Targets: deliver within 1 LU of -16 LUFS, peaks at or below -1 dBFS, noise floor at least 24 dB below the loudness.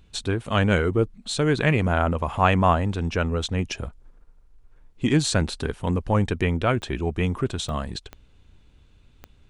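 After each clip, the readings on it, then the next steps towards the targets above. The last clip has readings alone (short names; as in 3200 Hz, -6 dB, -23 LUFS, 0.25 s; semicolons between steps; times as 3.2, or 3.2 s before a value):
clicks 4; loudness -24.0 LUFS; peak -5.0 dBFS; loudness target -16.0 LUFS
-> de-click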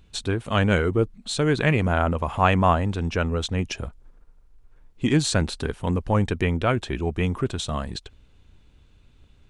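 clicks 0; loudness -24.0 LUFS; peak -5.0 dBFS; loudness target -16.0 LUFS
-> gain +8 dB; limiter -1 dBFS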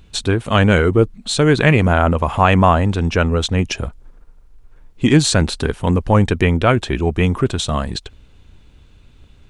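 loudness -16.5 LUFS; peak -1.0 dBFS; noise floor -48 dBFS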